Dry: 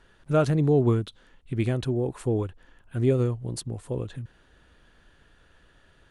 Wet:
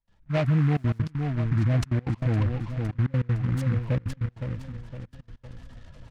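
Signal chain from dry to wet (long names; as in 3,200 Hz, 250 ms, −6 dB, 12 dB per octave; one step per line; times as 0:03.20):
gate on every frequency bin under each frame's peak −20 dB strong
high-shelf EQ 4,900 Hz −10 dB
automatic gain control gain up to 16.5 dB
high-frequency loss of the air 82 metres
phaser with its sweep stopped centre 1,500 Hz, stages 6
repeating echo 511 ms, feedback 46%, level −11 dB
brickwall limiter −14.5 dBFS, peak gain reduction 10 dB
gate pattern ".xxxxxxxxx.x.x" 196 BPM −24 dB
0:00.57–0:00.99: bit-depth reduction 10 bits, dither none
downsampling to 16,000 Hz
short delay modulated by noise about 1,400 Hz, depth 0.09 ms
level −1.5 dB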